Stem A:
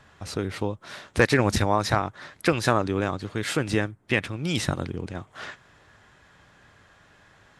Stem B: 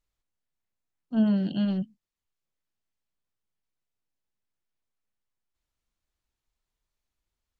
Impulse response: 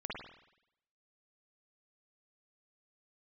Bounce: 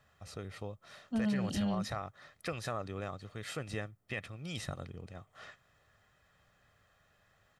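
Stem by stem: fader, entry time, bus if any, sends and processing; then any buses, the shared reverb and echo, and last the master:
−14.5 dB, 0.00 s, no send, comb filter 1.6 ms, depth 46%
−3.5 dB, 0.00 s, no send, high-shelf EQ 7,100 Hz +11.5 dB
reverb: not used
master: brickwall limiter −25.5 dBFS, peak gain reduction 11 dB

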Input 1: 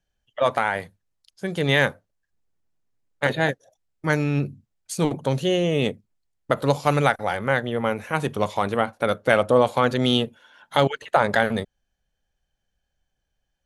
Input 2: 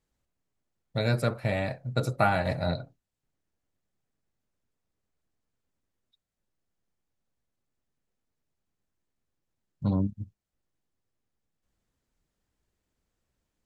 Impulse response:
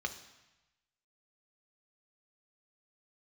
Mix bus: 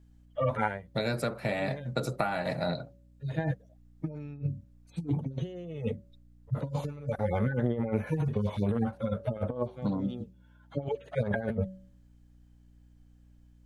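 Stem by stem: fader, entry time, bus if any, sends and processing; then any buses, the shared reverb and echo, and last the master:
−3.5 dB, 0.00 s, no send, harmonic-percussive split with one part muted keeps harmonic; spectral tilt −2 dB per octave; automatic ducking −23 dB, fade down 0.35 s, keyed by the second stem
−1.0 dB, 0.00 s, no send, high-pass filter 140 Hz 24 dB per octave; downward compressor 10 to 1, threshold −29 dBFS, peak gain reduction 11.5 dB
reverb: not used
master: hum removal 188.7 Hz, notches 3; compressor whose output falls as the input rises −29 dBFS, ratio −0.5; mains hum 60 Hz, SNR 25 dB

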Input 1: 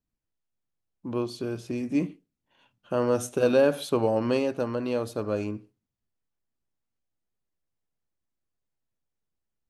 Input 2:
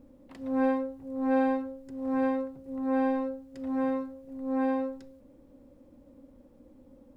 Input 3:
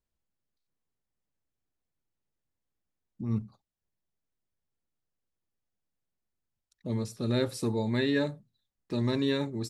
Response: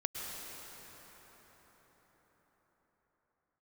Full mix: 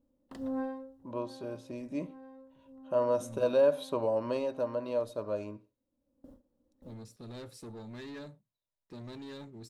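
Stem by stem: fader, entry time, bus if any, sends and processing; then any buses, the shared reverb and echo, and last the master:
−11.5 dB, 0.00 s, no send, hollow resonant body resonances 600/970/3,800 Hz, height 15 dB
+2.0 dB, 0.00 s, no send, noise gate with hold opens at −43 dBFS; parametric band 2,300 Hz −13 dB 0.33 octaves; downward compressor 4 to 1, threshold −35 dBFS, peak gain reduction 11.5 dB; automatic ducking −17 dB, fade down 0.45 s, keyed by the first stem
−15.5 dB, 0.00 s, no send, leveller curve on the samples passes 1; soft clipping −24.5 dBFS, distortion −13 dB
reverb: not used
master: no processing

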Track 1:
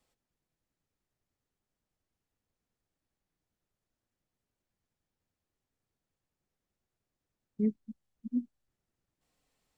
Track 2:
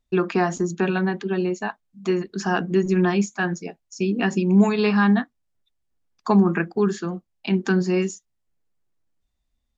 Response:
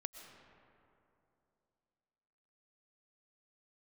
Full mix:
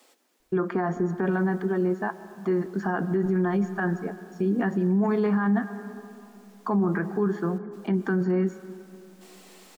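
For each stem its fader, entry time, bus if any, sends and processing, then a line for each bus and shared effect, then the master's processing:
0:00.98 −19.5 dB → 0:01.38 −11.5 dB, 0.00 s, no send, Butterworth high-pass 250 Hz 36 dB per octave; envelope flattener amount 100%
−2.5 dB, 0.40 s, send −4 dB, Savitzky-Golay smoothing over 41 samples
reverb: on, RT60 2.9 s, pre-delay 80 ms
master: brickwall limiter −16.5 dBFS, peak gain reduction 10 dB

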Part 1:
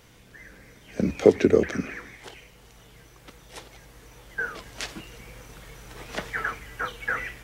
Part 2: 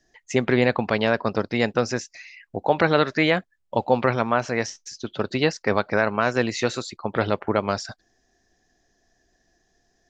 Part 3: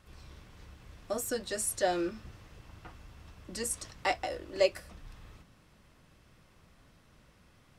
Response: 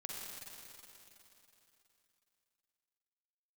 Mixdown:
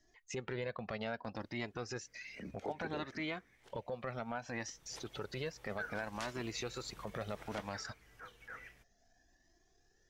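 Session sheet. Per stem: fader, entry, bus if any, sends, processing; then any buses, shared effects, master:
0:04.34 −18.5 dB → 0:05.11 −6.5 dB → 0:07.55 −6.5 dB → 0:07.88 −18 dB, 1.40 s, no bus, no send, no processing
−0.5 dB, 0.00 s, bus A, no send, flanger whose copies keep moving one way rising 0.63 Hz
muted
bus A: 0.0 dB, downward compressor 5 to 1, threshold −30 dBFS, peak gain reduction 11.5 dB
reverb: not used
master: transient designer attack −7 dB, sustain −3 dB; downward compressor 1.5 to 1, threshold −46 dBFS, peak gain reduction 6.5 dB

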